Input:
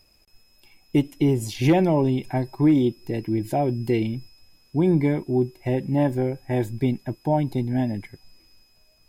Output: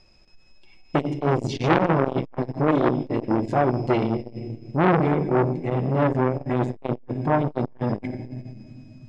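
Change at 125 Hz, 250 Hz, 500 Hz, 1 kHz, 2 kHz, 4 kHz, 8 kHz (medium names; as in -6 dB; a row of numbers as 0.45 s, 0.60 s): -0.5 dB, -2.0 dB, +1.5 dB, +6.0 dB, +5.5 dB, -1.0 dB, no reading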